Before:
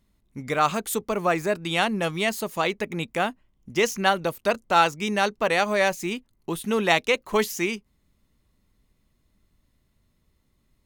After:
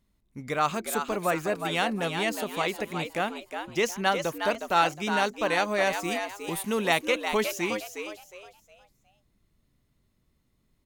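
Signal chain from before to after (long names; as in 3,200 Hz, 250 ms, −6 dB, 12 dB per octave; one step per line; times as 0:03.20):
0:06.03–0:06.88: parametric band 14,000 Hz +14.5 dB → +5.5 dB 1.6 octaves
echo with shifted repeats 362 ms, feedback 31%, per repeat +97 Hz, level −7 dB
level −4 dB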